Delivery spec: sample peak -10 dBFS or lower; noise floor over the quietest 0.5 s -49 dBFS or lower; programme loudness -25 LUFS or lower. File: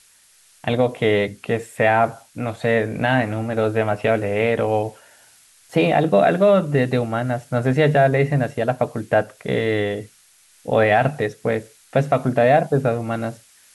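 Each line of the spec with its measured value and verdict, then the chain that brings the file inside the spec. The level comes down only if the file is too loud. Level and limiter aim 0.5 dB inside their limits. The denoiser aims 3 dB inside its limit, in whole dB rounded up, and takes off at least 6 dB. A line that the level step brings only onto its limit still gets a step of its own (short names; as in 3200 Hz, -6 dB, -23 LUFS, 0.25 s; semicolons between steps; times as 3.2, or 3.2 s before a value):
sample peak -5.5 dBFS: fail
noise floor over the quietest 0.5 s -54 dBFS: OK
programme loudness -20.0 LUFS: fail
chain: gain -5.5 dB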